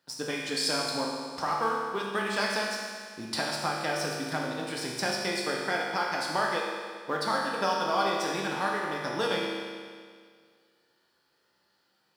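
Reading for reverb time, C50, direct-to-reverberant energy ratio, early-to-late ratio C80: 1.9 s, 0.5 dB, −3.0 dB, 2.0 dB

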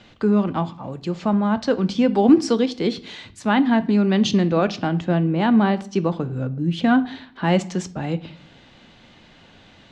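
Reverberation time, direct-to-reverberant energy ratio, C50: 0.60 s, 11.5 dB, 18.5 dB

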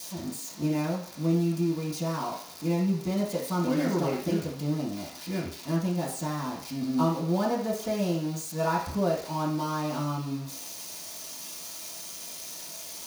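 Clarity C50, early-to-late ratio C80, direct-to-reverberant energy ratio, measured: 5.5 dB, 9.0 dB, −11.0 dB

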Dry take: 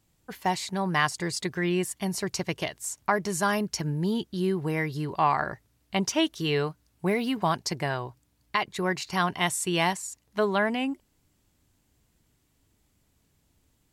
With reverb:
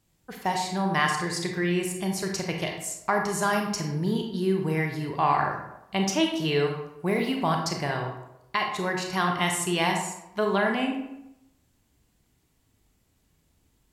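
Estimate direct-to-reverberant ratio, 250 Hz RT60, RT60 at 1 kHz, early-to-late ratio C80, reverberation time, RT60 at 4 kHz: 2.0 dB, 0.90 s, 0.85 s, 7.5 dB, 0.90 s, 0.55 s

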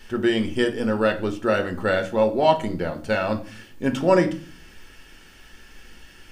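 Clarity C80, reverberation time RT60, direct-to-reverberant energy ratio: 18.5 dB, 0.45 s, 5.0 dB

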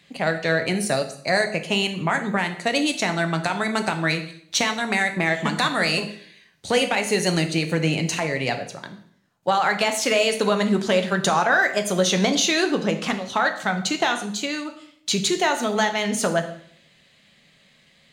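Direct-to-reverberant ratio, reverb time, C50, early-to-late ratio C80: 6.0 dB, 0.60 s, 11.0 dB, 13.5 dB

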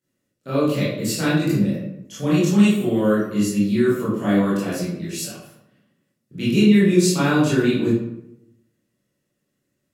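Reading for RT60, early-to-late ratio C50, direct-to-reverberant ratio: 0.80 s, 0.0 dB, −11.0 dB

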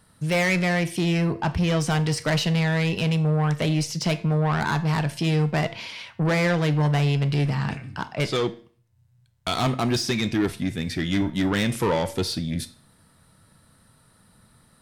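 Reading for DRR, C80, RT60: 10.5 dB, 20.0 dB, 0.45 s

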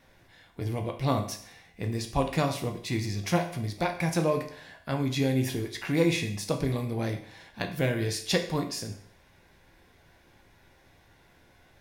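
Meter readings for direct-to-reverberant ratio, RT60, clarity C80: 4.0 dB, 0.55 s, 13.0 dB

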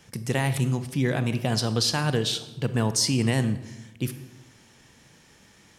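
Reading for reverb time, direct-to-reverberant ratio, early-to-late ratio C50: 0.95 s, 11.0 dB, 12.5 dB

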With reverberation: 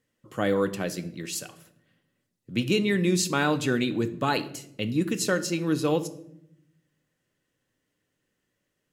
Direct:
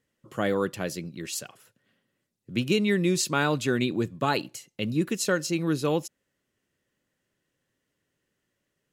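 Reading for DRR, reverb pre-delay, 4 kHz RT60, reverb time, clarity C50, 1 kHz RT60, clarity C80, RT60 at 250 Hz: 9.5 dB, 4 ms, 0.50 s, 0.75 s, 16.0 dB, 0.65 s, 18.5 dB, 1.2 s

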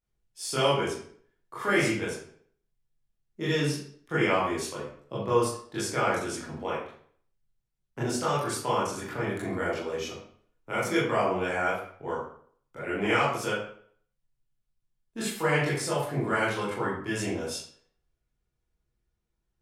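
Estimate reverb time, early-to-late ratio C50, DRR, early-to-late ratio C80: 0.55 s, 2.0 dB, −9.5 dB, 6.5 dB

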